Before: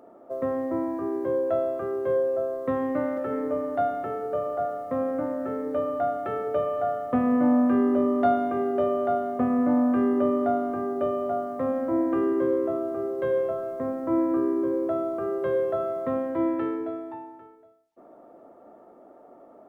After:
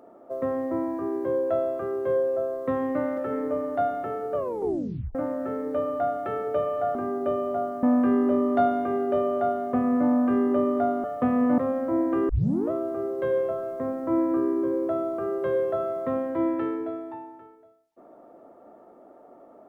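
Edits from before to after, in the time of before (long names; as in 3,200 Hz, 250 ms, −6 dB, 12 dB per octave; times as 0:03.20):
0:04.35: tape stop 0.80 s
0:06.95–0:07.49: swap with 0:10.70–0:11.58
0:12.29: tape start 0.42 s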